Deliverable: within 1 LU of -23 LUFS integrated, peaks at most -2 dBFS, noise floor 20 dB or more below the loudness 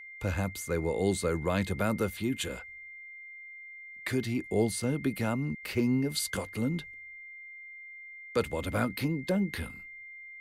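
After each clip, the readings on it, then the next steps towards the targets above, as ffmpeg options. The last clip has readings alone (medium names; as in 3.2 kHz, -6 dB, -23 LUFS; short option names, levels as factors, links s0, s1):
steady tone 2.1 kHz; tone level -44 dBFS; loudness -31.5 LUFS; peak level -14.5 dBFS; loudness target -23.0 LUFS
-> -af "bandreject=f=2100:w=30"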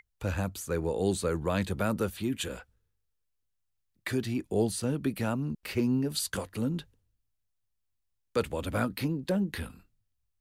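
steady tone not found; loudness -31.5 LUFS; peak level -15.0 dBFS; loudness target -23.0 LUFS
-> -af "volume=2.66"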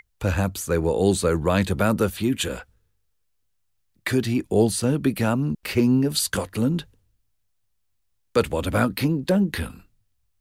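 loudness -23.0 LUFS; peak level -6.5 dBFS; noise floor -71 dBFS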